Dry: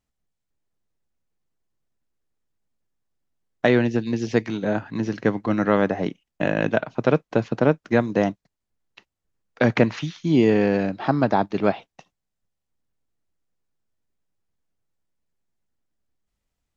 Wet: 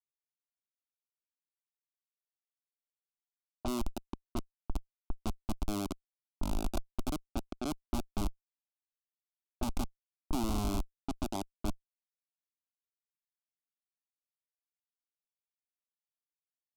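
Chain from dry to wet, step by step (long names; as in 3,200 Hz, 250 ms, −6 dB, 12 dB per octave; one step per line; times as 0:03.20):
comparator with hysteresis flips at −13.5 dBFS
phaser with its sweep stopped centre 480 Hz, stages 6
low-pass that shuts in the quiet parts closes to 670 Hz, open at −29 dBFS
level −1.5 dB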